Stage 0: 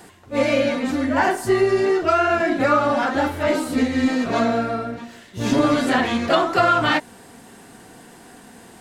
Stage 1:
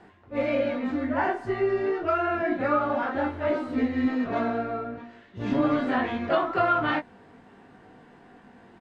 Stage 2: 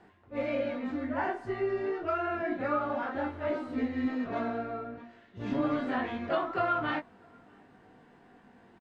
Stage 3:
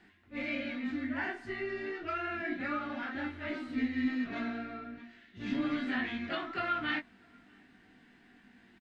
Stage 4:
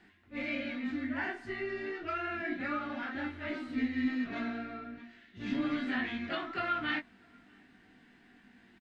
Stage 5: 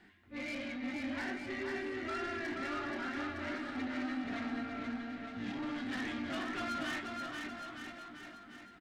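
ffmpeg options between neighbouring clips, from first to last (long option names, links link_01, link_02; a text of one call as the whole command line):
ffmpeg -i in.wav -filter_complex "[0:a]lowpass=2300,asplit=2[link_01][link_02];[link_02]adelay=20,volume=-5.5dB[link_03];[link_01][link_03]amix=inputs=2:normalize=0,volume=-7.5dB" out.wav
ffmpeg -i in.wav -filter_complex "[0:a]asplit=2[link_01][link_02];[link_02]adelay=641.4,volume=-30dB,highshelf=frequency=4000:gain=-14.4[link_03];[link_01][link_03]amix=inputs=2:normalize=0,volume=-6dB" out.wav
ffmpeg -i in.wav -af "equalizer=frequency=125:width_type=o:width=1:gain=-9,equalizer=frequency=250:width_type=o:width=1:gain=4,equalizer=frequency=500:width_type=o:width=1:gain=-12,equalizer=frequency=1000:width_type=o:width=1:gain=-9,equalizer=frequency=2000:width_type=o:width=1:gain=6,equalizer=frequency=4000:width_type=o:width=1:gain=4" out.wav
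ffmpeg -i in.wav -af anull out.wav
ffmpeg -i in.wav -filter_complex "[0:a]bandreject=frequency=2600:width=27,asoftclip=type=tanh:threshold=-36.5dB,asplit=2[link_01][link_02];[link_02]aecho=0:1:480|912|1301|1651|1966:0.631|0.398|0.251|0.158|0.1[link_03];[link_01][link_03]amix=inputs=2:normalize=0" out.wav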